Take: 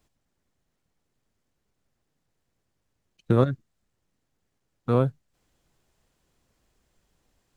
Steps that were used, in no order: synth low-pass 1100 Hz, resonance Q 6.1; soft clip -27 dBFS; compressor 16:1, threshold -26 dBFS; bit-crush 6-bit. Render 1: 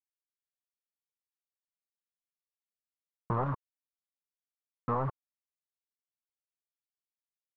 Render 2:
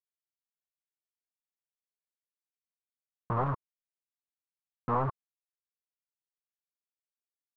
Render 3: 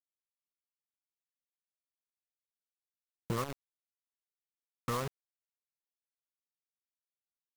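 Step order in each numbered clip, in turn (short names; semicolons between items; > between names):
bit-crush > soft clip > synth low-pass > compressor; soft clip > compressor > bit-crush > synth low-pass; synth low-pass > compressor > bit-crush > soft clip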